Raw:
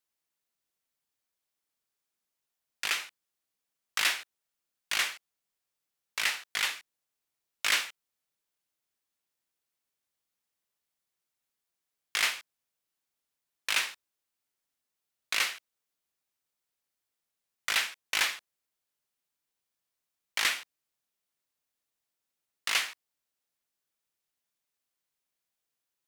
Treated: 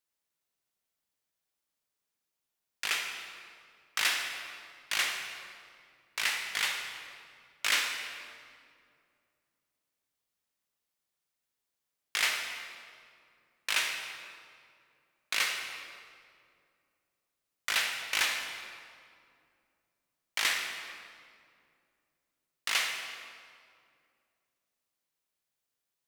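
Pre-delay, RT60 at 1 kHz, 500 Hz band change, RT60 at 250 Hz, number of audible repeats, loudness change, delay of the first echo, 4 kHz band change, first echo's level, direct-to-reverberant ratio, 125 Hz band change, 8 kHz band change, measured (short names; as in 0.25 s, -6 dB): 33 ms, 2.1 s, +1.0 dB, 3.0 s, none, -1.5 dB, none, 0.0 dB, none, 3.0 dB, n/a, -0.5 dB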